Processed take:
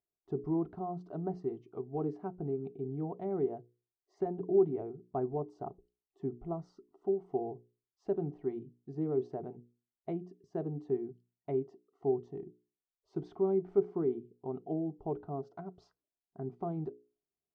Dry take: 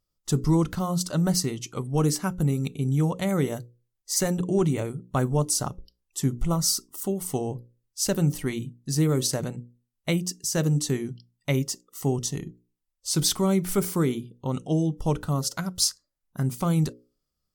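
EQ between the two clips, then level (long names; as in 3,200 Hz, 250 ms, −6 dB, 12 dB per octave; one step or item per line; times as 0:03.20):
pair of resonant band-passes 530 Hz, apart 0.78 octaves
high-frequency loss of the air 140 metres
spectral tilt −2.5 dB per octave
−2.5 dB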